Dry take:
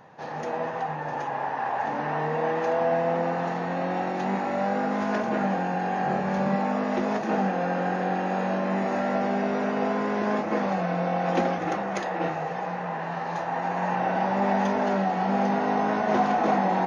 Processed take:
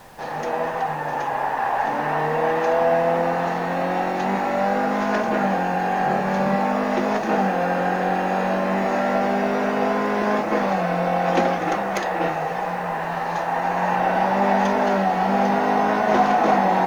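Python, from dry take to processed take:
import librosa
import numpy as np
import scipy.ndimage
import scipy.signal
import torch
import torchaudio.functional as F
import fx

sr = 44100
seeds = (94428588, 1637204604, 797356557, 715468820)

y = fx.tracing_dist(x, sr, depth_ms=0.022)
y = fx.low_shelf(y, sr, hz=350.0, db=-5.0)
y = fx.dmg_noise_colour(y, sr, seeds[0], colour='pink', level_db=-57.0)
y = y * 10.0 ** (6.5 / 20.0)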